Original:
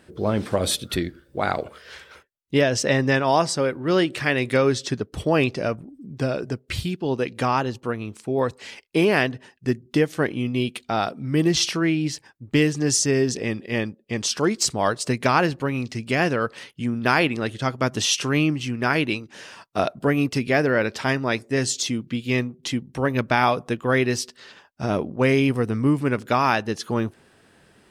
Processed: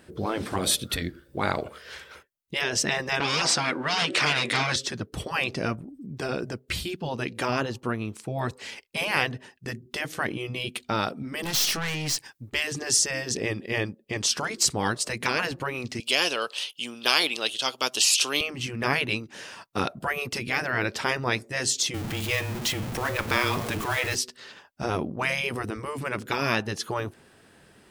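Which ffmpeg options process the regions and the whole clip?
-filter_complex "[0:a]asettb=1/sr,asplit=3[a][b][c];[a]atrim=end=3.204[d];[b]atrim=start=3.2:end=4.76,asetpts=PTS-STARTPTS,afade=t=in:d=0.004:c=qsin,afade=t=out:st=1.556:d=0.004:c=qsin,highshelf=f=5.2k:g=10.5,asplit=2[e][f];[f]highpass=f=720:p=1,volume=18dB,asoftclip=type=tanh:threshold=-5dB[g];[e][g]amix=inputs=2:normalize=0,lowpass=f=2.8k:p=1,volume=-6dB,highpass=170,lowpass=7k[h];[c]atrim=start=4.756[i];[d][h]acrossfade=d=0.004:c1=hsin:c2=qsin[j];[j][i]acrossfade=d=0.004:c1=qsin:c2=hsin,asettb=1/sr,asplit=3[k][l][m];[k]atrim=end=11.434[n];[l]atrim=start=11.43:end=12.5,asetpts=PTS-STARTPTS,afade=t=in:d=0.004:c=qsin,afade=t=out:st=1.066:d=0.004:c=qsin,highshelf=f=2k:g=11.5,aeval=exprs='(tanh(14.1*val(0)+0.25)-tanh(0.25))/14.1':c=same[o];[m]atrim=start=12.496[p];[n][o]acrossfade=d=0.004:c1=hsin:c2=qsin[q];[q][p]acrossfade=d=0.004:c1=qsin:c2=hsin,asettb=1/sr,asplit=3[r][s][t];[r]atrim=end=16.004[u];[s]atrim=start=16:end=18.41,asetpts=PTS-STARTPTS,afade=t=in:d=0.004:c=qsin,afade=t=out:st=2.406:d=0.004:c=qsin,highpass=580,highshelf=f=2.4k:t=q:w=3:g=7.5[v];[t]atrim=start=18.406[w];[u][v]acrossfade=d=0.004:c1=hsin:c2=qsin[x];[x][w]acrossfade=d=0.004:c1=qsin:c2=hsin,asettb=1/sr,asplit=3[y][z][aa];[y]atrim=end=21.944[ab];[z]atrim=start=21.94:end=24.15,asetpts=PTS-STARTPTS,afade=t=in:d=0.004:c=qsin,afade=t=out:st=2.206:d=0.004:c=qsin,aeval=exprs='val(0)+0.5*0.0398*sgn(val(0))':c=same,afreqshift=-18,bandreject=f=108.5:t=h:w=4,bandreject=f=217:t=h:w=4,bandreject=f=325.5:t=h:w=4,bandreject=f=434:t=h:w=4,bandreject=f=542.5:t=h:w=4,bandreject=f=651:t=h:w=4,bandreject=f=759.5:t=h:w=4,bandreject=f=868:t=h:w=4,bandreject=f=976.5:t=h:w=4,bandreject=f=1.085k:t=h:w=4,bandreject=f=1.1935k:t=h:w=4,bandreject=f=1.302k:t=h:w=4,bandreject=f=1.4105k:t=h:w=4,bandreject=f=1.519k:t=h:w=4,bandreject=f=1.6275k:t=h:w=4,bandreject=f=1.736k:t=h:w=4,bandreject=f=1.8445k:t=h:w=4,bandreject=f=1.953k:t=h:w=4,bandreject=f=2.0615k:t=h:w=4,bandreject=f=2.17k:t=h:w=4,bandreject=f=2.2785k:t=h:w=4,bandreject=f=2.387k:t=h:w=4,bandreject=f=2.4955k:t=h:w=4,bandreject=f=2.604k:t=h:w=4,bandreject=f=2.7125k:t=h:w=4,bandreject=f=2.821k:t=h:w=4,bandreject=f=2.9295k:t=h:w=4,bandreject=f=3.038k:t=h:w=4,bandreject=f=3.1465k:t=h:w=4,bandreject=f=3.255k:t=h:w=4,bandreject=f=3.3635k:t=h:w=4,bandreject=f=3.472k:t=h:w=4,bandreject=f=3.5805k:t=h:w=4[ac];[aa]atrim=start=24.146[ad];[ab][ac]acrossfade=d=0.004:c1=hsin:c2=qsin[ae];[ae][ad]acrossfade=d=0.004:c1=qsin:c2=hsin,highshelf=f=12k:g=6,afftfilt=real='re*lt(hypot(re,im),0.355)':imag='im*lt(hypot(re,im),0.355)':win_size=1024:overlap=0.75"

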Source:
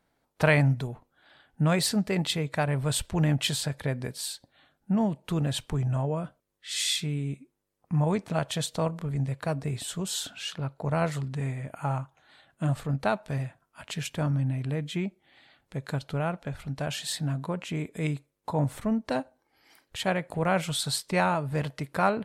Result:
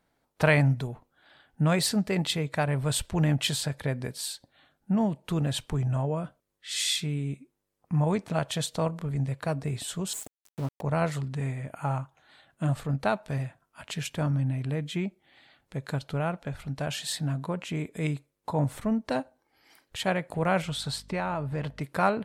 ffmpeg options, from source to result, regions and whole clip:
-filter_complex "[0:a]asettb=1/sr,asplit=3[a][b][c];[a]atrim=end=10.134[d];[b]atrim=start=10.13:end=10.81,asetpts=PTS-STARTPTS,afade=t=in:d=0.004:c=qsin,afade=t=out:st=0.676:d=0.004:c=qsin,asuperstop=centerf=3000:order=20:qfactor=0.53,equalizer=f=270:t=o:w=0.32:g=7.5,aeval=exprs='val(0)*gte(abs(val(0)),0.0126)':c=same[e];[c]atrim=start=10.806[f];[d][e]acrossfade=d=0.004:c1=hsin:c2=qsin[g];[g][f]acrossfade=d=0.004:c1=qsin:c2=hsin,asettb=1/sr,asplit=3[h][i][j];[h]atrim=end=20.624[k];[i]atrim=start=20.62:end=21.81,asetpts=PTS-STARTPTS,afade=t=in:d=0.004:c=qsin,afade=t=out:st=1.186:d=0.004:c=qsin,lowpass=f=3.4k:p=1,acompressor=threshold=-26dB:ratio=5:attack=3.2:release=140:knee=1:detection=peak,aeval=exprs='val(0)+0.00282*(sin(2*PI*50*n/s)+sin(2*PI*2*50*n/s)/2+sin(2*PI*3*50*n/s)/3+sin(2*PI*4*50*n/s)/4+sin(2*PI*5*50*n/s)/5)':c=same[l];[j]atrim=start=21.806[m];[k][l]acrossfade=d=0.004:c1=hsin:c2=qsin[n];[n][m]acrossfade=d=0.004:c1=qsin:c2=hsin"

